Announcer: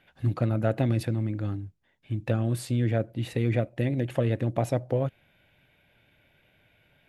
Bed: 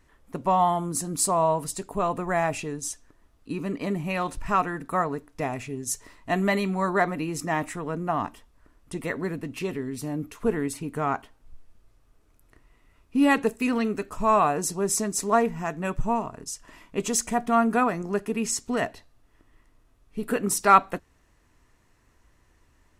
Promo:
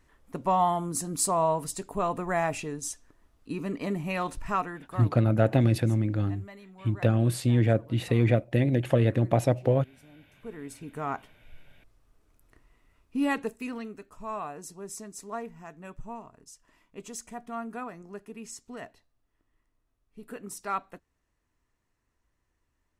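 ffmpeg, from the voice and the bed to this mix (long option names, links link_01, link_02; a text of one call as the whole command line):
ffmpeg -i stem1.wav -i stem2.wav -filter_complex "[0:a]adelay=4750,volume=3dB[link_01];[1:a]volume=18dB,afade=type=out:start_time=4.32:duration=0.86:silence=0.0891251,afade=type=in:start_time=10.35:duration=1.07:silence=0.0944061,afade=type=out:start_time=12.62:duration=1.35:silence=0.251189[link_02];[link_01][link_02]amix=inputs=2:normalize=0" out.wav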